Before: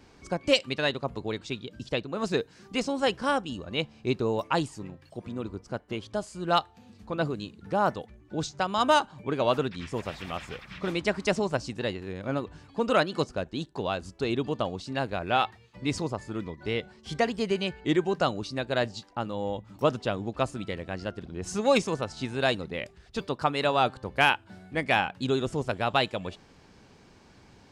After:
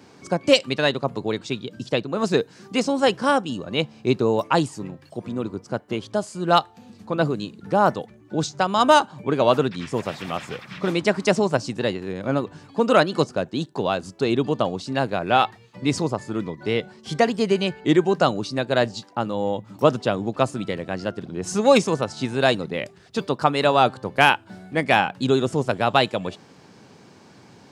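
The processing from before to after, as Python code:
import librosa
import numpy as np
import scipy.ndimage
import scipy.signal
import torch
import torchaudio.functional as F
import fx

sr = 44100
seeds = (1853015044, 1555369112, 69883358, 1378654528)

y = scipy.signal.sosfilt(scipy.signal.butter(4, 110.0, 'highpass', fs=sr, output='sos'), x)
y = fx.peak_eq(y, sr, hz=2500.0, db=-3.0, octaves=1.6)
y = F.gain(torch.from_numpy(y), 7.5).numpy()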